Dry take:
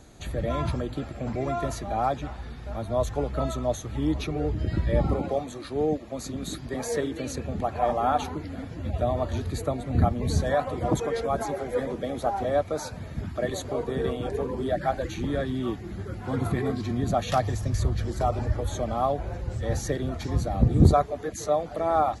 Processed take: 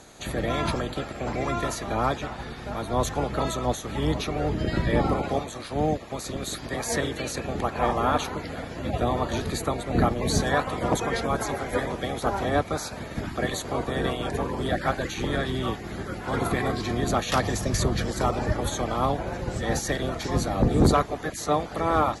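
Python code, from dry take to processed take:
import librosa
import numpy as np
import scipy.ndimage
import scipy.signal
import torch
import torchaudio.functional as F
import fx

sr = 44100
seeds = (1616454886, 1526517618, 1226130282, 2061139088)

y = fx.spec_clip(x, sr, under_db=15)
y = fx.cheby_harmonics(y, sr, harmonics=(5,), levels_db=(-14,), full_scale_db=-3.5)
y = y * librosa.db_to_amplitude(-4.5)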